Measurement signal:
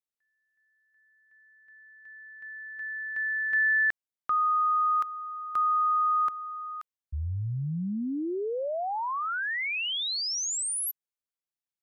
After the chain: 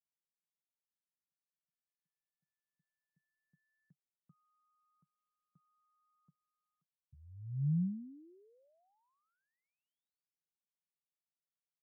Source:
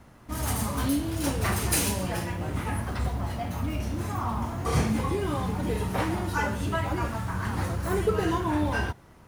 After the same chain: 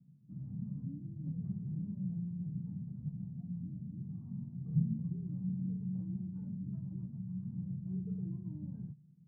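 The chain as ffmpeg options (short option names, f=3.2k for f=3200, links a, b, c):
-af "asuperpass=centerf=160:order=4:qfactor=3.1"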